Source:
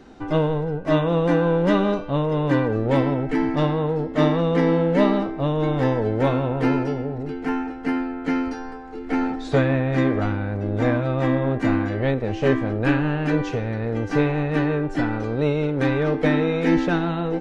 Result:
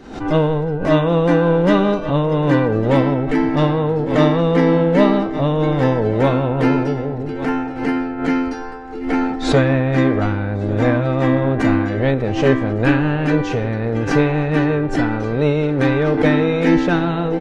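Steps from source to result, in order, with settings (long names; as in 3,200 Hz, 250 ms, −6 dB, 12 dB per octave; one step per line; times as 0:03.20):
on a send: single-tap delay 1,149 ms −17.5 dB
on the sum: background raised ahead of every attack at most 92 dB per second
level +4.5 dB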